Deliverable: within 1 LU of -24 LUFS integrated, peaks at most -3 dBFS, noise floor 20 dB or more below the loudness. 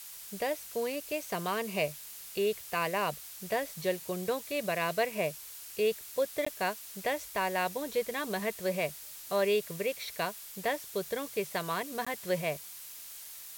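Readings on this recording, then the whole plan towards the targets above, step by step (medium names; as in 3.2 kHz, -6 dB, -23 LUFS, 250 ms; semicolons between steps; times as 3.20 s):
dropouts 2; longest dropout 15 ms; noise floor -47 dBFS; noise floor target -54 dBFS; loudness -33.5 LUFS; peak level -17.0 dBFS; loudness target -24.0 LUFS
-> interpolate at 6.45/12.05 s, 15 ms; noise print and reduce 7 dB; trim +9.5 dB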